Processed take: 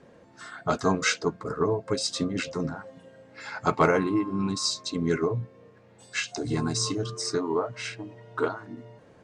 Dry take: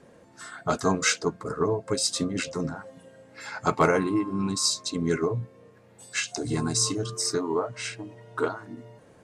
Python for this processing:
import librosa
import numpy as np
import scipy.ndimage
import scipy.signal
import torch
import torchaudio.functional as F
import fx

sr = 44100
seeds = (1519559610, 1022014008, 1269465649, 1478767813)

y = scipy.signal.sosfilt(scipy.signal.butter(2, 5700.0, 'lowpass', fs=sr, output='sos'), x)